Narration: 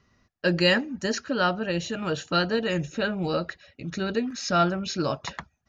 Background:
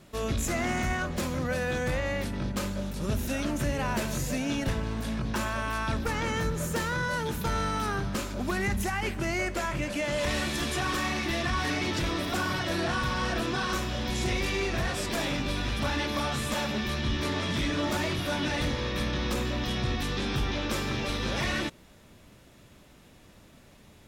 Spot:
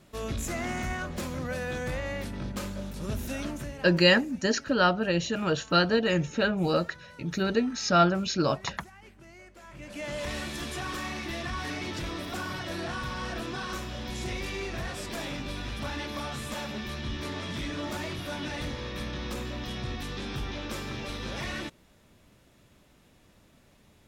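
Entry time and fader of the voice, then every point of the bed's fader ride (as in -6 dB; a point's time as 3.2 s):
3.40 s, +1.0 dB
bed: 3.45 s -3.5 dB
4.14 s -21.5 dB
9.56 s -21.5 dB
10.05 s -5.5 dB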